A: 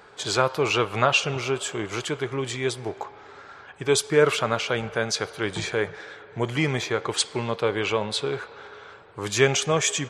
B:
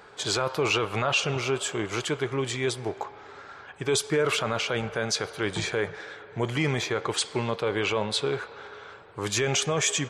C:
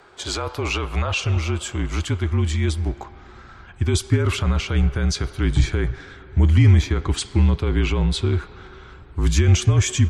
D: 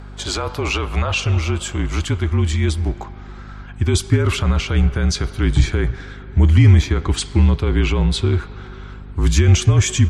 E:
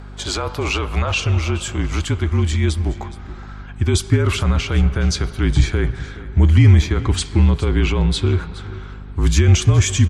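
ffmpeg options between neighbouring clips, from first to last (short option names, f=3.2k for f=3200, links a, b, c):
-af "alimiter=limit=-14.5dB:level=0:latency=1:release=13"
-af "afreqshift=-40,asubboost=boost=11.5:cutoff=160"
-af "aeval=exprs='val(0)+0.0141*(sin(2*PI*50*n/s)+sin(2*PI*2*50*n/s)/2+sin(2*PI*3*50*n/s)/3+sin(2*PI*4*50*n/s)/4+sin(2*PI*5*50*n/s)/5)':c=same,volume=3dB"
-af "aecho=1:1:419:0.141"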